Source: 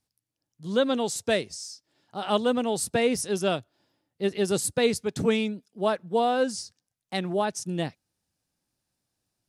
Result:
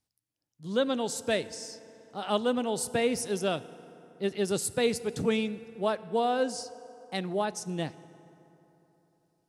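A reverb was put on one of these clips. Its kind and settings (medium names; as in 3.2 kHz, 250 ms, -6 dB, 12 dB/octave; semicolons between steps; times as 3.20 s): FDN reverb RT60 3.5 s, high-frequency decay 0.5×, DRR 15.5 dB; trim -3.5 dB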